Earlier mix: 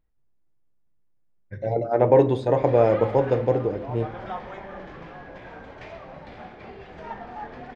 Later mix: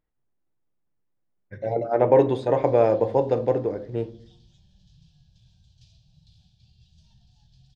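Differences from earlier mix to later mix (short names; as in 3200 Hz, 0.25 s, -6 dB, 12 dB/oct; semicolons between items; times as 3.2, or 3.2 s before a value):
background: add inverse Chebyshev band-stop 250–2200 Hz, stop band 40 dB; master: add low shelf 99 Hz -10 dB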